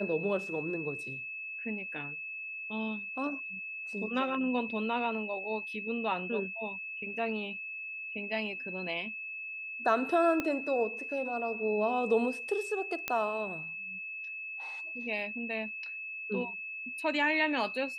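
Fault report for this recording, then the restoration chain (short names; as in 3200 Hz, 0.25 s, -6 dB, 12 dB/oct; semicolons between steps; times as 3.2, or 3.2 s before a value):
tone 2600 Hz -38 dBFS
10.4 pop -18 dBFS
13.08 pop -15 dBFS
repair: de-click; notch 2600 Hz, Q 30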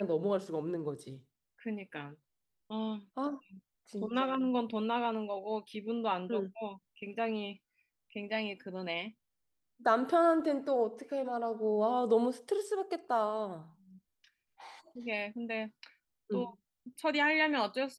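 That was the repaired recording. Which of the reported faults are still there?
10.4 pop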